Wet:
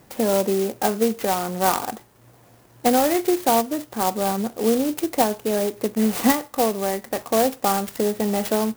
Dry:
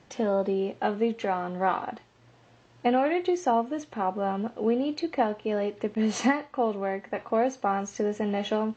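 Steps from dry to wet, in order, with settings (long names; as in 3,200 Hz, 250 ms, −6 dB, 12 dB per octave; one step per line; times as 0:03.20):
converter with an unsteady clock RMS 0.084 ms
level +5.5 dB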